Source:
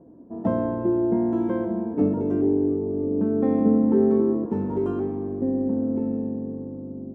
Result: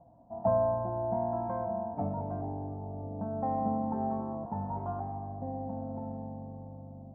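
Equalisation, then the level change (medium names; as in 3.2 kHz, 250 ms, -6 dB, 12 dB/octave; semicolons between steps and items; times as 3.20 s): FFT filter 130 Hz 0 dB, 400 Hz -24 dB, 720 Hz +11 dB, 1.2 kHz -3 dB, 2.9 kHz -19 dB; -2.5 dB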